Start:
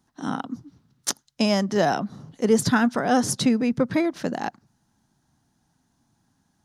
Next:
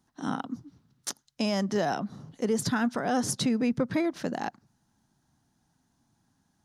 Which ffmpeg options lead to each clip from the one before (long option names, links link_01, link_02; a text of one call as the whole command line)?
ffmpeg -i in.wav -af "alimiter=limit=-14.5dB:level=0:latency=1:release=143,volume=-3dB" out.wav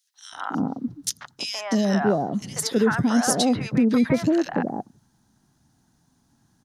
ffmpeg -i in.wav -filter_complex "[0:a]acrossover=split=750|2400[link_01][link_02][link_03];[link_02]adelay=140[link_04];[link_01]adelay=320[link_05];[link_05][link_04][link_03]amix=inputs=3:normalize=0,volume=7.5dB" out.wav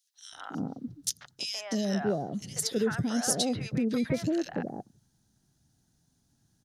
ffmpeg -i in.wav -af "equalizer=frequency=250:width_type=o:width=1:gain=-6,equalizer=frequency=1000:width_type=o:width=1:gain=-11,equalizer=frequency=2000:width_type=o:width=1:gain=-3,volume=-3.5dB" out.wav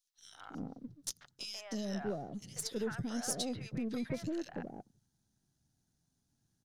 ffmpeg -i in.wav -af "aeval=exprs='if(lt(val(0),0),0.708*val(0),val(0))':channel_layout=same,volume=-7.5dB" out.wav